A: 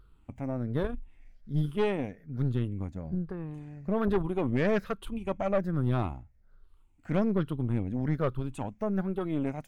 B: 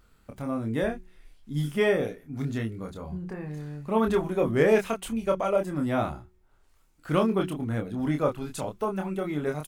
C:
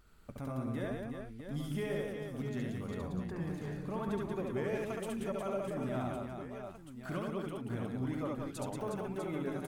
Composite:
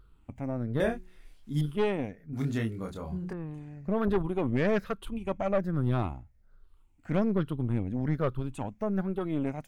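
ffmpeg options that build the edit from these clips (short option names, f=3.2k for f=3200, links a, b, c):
-filter_complex "[1:a]asplit=2[a][b];[0:a]asplit=3[c][d][e];[c]atrim=end=0.802[f];[a]atrim=start=0.798:end=1.612[g];[d]atrim=start=1.608:end=2.332[h];[b]atrim=start=2.328:end=3.332[i];[e]atrim=start=3.328[j];[f][g]acrossfade=d=0.004:c1=hsin:c2=hsin[k];[k][h]acrossfade=d=0.004:c1=hsin:c2=hsin[l];[l][i]acrossfade=d=0.004:c1=hsin:c2=hsin[m];[m][j]acrossfade=d=0.004:c1=hsin:c2=hsin"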